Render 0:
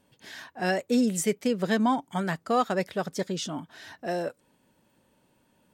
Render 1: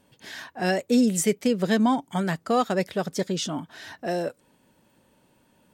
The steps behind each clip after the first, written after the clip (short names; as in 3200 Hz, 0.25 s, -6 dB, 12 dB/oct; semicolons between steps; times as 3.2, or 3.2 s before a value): dynamic EQ 1200 Hz, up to -4 dB, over -36 dBFS, Q 0.71; gain +4 dB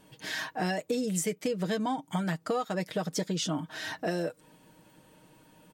comb 6.4 ms, depth 62%; compressor 6:1, threshold -31 dBFS, peak gain reduction 15 dB; gain +3 dB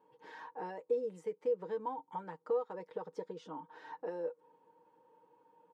double band-pass 660 Hz, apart 0.88 oct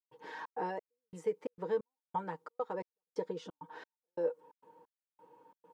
step gate ".xxx.xx.." 133 bpm -60 dB; gain +5.5 dB